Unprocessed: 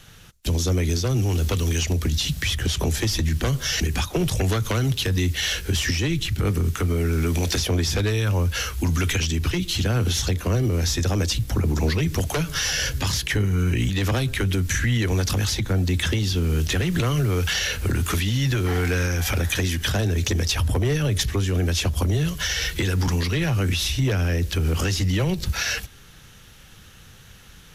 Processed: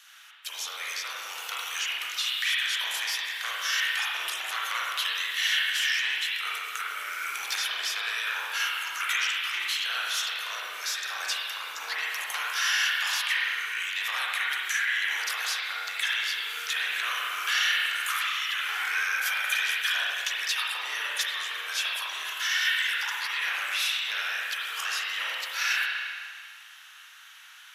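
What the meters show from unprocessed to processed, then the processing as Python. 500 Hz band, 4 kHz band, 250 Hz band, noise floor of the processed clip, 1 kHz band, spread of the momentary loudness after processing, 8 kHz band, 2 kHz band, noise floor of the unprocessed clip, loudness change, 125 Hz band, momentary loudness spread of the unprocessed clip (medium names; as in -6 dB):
-23.5 dB, 0.0 dB, under -40 dB, -49 dBFS, 0.0 dB, 8 LU, -6.0 dB, +3.5 dB, -47 dBFS, -4.5 dB, under -40 dB, 2 LU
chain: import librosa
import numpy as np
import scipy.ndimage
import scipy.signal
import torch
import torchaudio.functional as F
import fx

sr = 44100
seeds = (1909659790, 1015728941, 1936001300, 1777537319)

y = scipy.signal.sosfilt(scipy.signal.butter(4, 1100.0, 'highpass', fs=sr, output='sos'), x)
y = fx.dynamic_eq(y, sr, hz=6100.0, q=1.3, threshold_db=-39.0, ratio=4.0, max_db=-4)
y = fx.rev_spring(y, sr, rt60_s=2.0, pass_ms=(34, 51), chirp_ms=75, drr_db=-6.0)
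y = F.gain(torch.from_numpy(y), -3.0).numpy()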